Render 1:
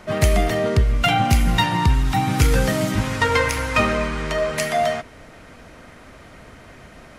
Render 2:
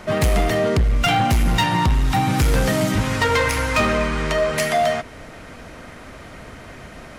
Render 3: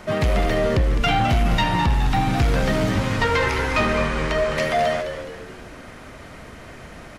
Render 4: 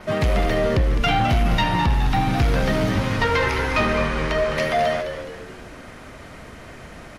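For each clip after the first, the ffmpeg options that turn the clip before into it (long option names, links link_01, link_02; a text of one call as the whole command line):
ffmpeg -i in.wav -filter_complex "[0:a]asplit=2[link_01][link_02];[link_02]acompressor=threshold=-26dB:ratio=6,volume=-2.5dB[link_03];[link_01][link_03]amix=inputs=2:normalize=0,volume=13dB,asoftclip=hard,volume=-13dB" out.wav
ffmpeg -i in.wav -filter_complex "[0:a]acrossover=split=5400[link_01][link_02];[link_02]acompressor=threshold=-44dB:ratio=4:attack=1:release=60[link_03];[link_01][link_03]amix=inputs=2:normalize=0,asplit=6[link_04][link_05][link_06][link_07][link_08][link_09];[link_05]adelay=209,afreqshift=-85,volume=-8.5dB[link_10];[link_06]adelay=418,afreqshift=-170,volume=-15.6dB[link_11];[link_07]adelay=627,afreqshift=-255,volume=-22.8dB[link_12];[link_08]adelay=836,afreqshift=-340,volume=-29.9dB[link_13];[link_09]adelay=1045,afreqshift=-425,volume=-37dB[link_14];[link_04][link_10][link_11][link_12][link_13][link_14]amix=inputs=6:normalize=0,volume=-2dB" out.wav
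ffmpeg -i in.wav -af "adynamicequalizer=threshold=0.00158:dfrequency=7600:dqfactor=3.6:tfrequency=7600:tqfactor=3.6:attack=5:release=100:ratio=0.375:range=3:mode=cutabove:tftype=bell" out.wav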